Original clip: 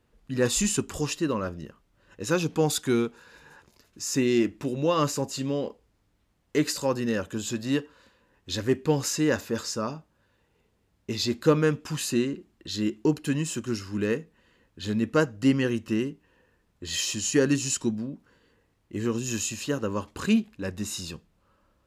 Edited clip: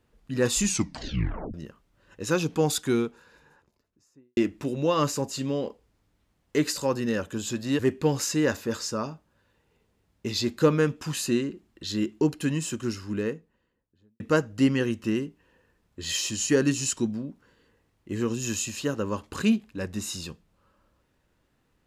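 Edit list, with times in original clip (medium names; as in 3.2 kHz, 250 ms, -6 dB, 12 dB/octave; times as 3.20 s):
0.64 s: tape stop 0.90 s
2.73–4.37 s: studio fade out
7.79–8.63 s: delete
13.64–15.04 s: studio fade out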